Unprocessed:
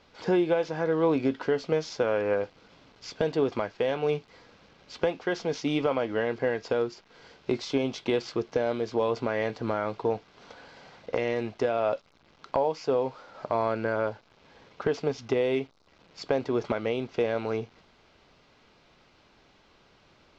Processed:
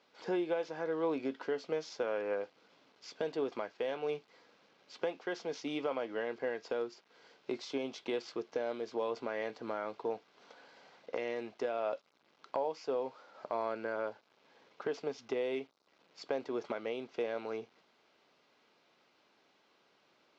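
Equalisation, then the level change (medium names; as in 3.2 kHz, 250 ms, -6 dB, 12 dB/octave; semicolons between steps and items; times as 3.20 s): high-pass 260 Hz 12 dB/octave; -8.5 dB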